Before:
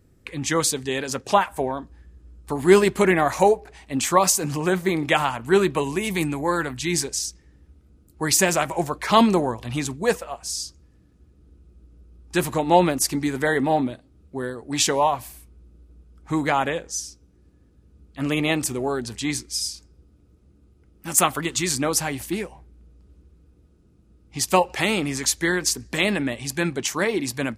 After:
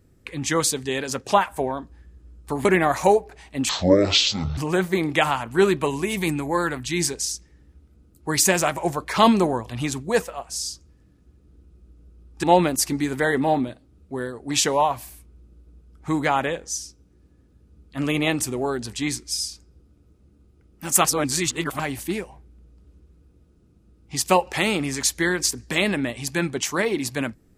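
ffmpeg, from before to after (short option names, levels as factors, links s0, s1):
-filter_complex "[0:a]asplit=7[s0][s1][s2][s3][s4][s5][s6];[s0]atrim=end=2.652[s7];[s1]atrim=start=3.008:end=4.054[s8];[s2]atrim=start=4.05:end=4.51,asetpts=PTS-STARTPTS,asetrate=22932,aresample=44100[s9];[s3]atrim=start=4.506:end=12.372[s10];[s4]atrim=start=12.658:end=21.272[s11];[s5]atrim=start=21.268:end=22.022,asetpts=PTS-STARTPTS,areverse[s12];[s6]atrim=start=22.018[s13];[s7][s8]acrossfade=d=0.004:c1=hsin:c2=hsin[s14];[s14][s9]acrossfade=d=0.004:c1=hsin:c2=hsin[s15];[s15][s10]acrossfade=d=0.004:c1=hsin:c2=hsin[s16];[s16][s11]acrossfade=d=0.004:c1=hsin:c2=hsin[s17];[s17][s12]acrossfade=d=0.004:c1=hsin:c2=hsin[s18];[s18][s13]acrossfade=d=0.004:c1=hsin:c2=hsin"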